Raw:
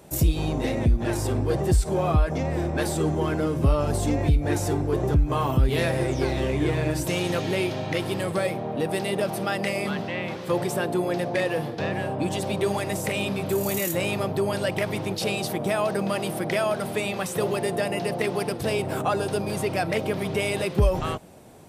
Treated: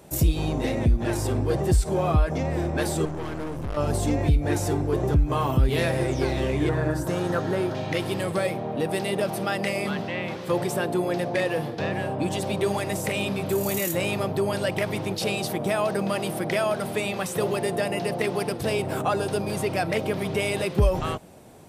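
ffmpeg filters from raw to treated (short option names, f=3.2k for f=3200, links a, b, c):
-filter_complex "[0:a]asettb=1/sr,asplit=3[a][b][c];[a]atrim=end=3.054[d];[b]atrim=start=3.05:end=3.77,asetpts=PTS-STARTPTS,afade=t=in:d=0.004:c=qsin,afade=t=out:st=0.716:d=0.004:c=qsin,aeval=exprs='(tanh(28.2*val(0)+0.7)-tanh(0.7))/28.2':c=same[e];[c]atrim=start=3.766[f];[d][e]acrossfade=d=0.004:c1=hsin:c2=qsin[g];[g][f]acrossfade=d=0.004:c1=qsin:c2=hsin,asettb=1/sr,asplit=3[h][i][j];[h]atrim=end=6.694[k];[i]atrim=start=6.69:end=7.75,asetpts=PTS-STARTPTS,afade=t=in:d=0.004:c=qsin,afade=t=out:st=1.056:d=0.004:c=qsin,highshelf=f=1.9k:t=q:w=3:g=-6.5[l];[j]atrim=start=7.746[m];[k][l]acrossfade=d=0.004:c1=hsin:c2=qsin[n];[n][m]acrossfade=d=0.004:c1=qsin:c2=hsin"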